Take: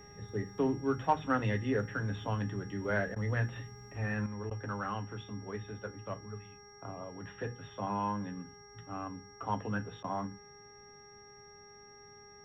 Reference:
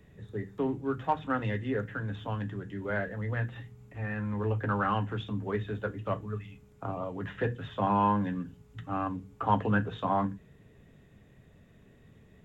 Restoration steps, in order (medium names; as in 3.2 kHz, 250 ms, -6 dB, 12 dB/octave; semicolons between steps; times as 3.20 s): de-hum 409.7 Hz, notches 5; band-stop 5.6 kHz, Q 30; interpolate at 3.15/4.50/10.03 s, 10 ms; gain correction +8.5 dB, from 4.26 s